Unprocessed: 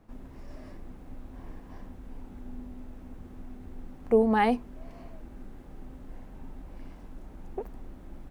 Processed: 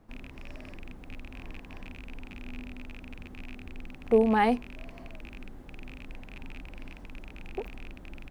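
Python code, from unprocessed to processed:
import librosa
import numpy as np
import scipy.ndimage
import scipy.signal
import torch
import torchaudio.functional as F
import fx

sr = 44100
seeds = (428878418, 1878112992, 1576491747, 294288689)

y = fx.rattle_buzz(x, sr, strikes_db=-44.0, level_db=-33.0)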